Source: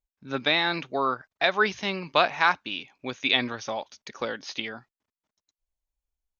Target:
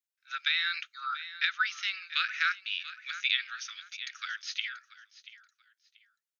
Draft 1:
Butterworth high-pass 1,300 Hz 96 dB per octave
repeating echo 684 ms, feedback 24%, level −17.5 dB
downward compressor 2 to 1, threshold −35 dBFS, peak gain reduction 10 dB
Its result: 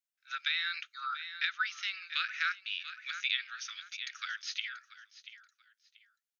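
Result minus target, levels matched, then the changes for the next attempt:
downward compressor: peak gain reduction +4 dB
change: downward compressor 2 to 1, threshold −27 dBFS, peak gain reduction 6 dB

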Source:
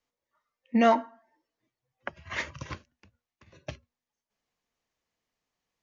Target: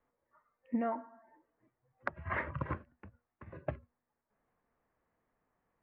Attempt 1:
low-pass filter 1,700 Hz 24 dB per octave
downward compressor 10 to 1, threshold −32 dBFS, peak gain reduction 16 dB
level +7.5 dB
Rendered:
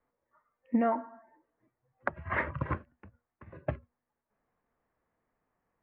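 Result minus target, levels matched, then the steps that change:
downward compressor: peak gain reduction −6.5 dB
change: downward compressor 10 to 1, threshold −39.5 dBFS, peak gain reduction 22.5 dB

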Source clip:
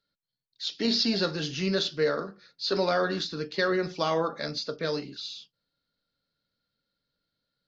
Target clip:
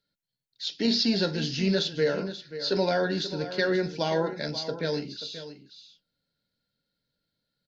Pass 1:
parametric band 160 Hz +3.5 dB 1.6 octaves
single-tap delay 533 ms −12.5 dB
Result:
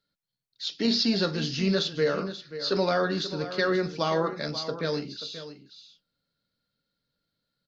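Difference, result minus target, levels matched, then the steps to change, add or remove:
1,000 Hz band +2.5 dB
add first: Butterworth band-reject 1,200 Hz, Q 3.6

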